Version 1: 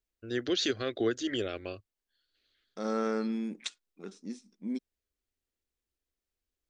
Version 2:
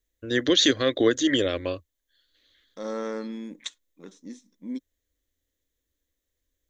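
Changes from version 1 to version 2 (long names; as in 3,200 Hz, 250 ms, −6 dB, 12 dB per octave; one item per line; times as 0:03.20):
first voice +9.0 dB
master: add EQ curve with evenly spaced ripples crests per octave 1.1, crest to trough 8 dB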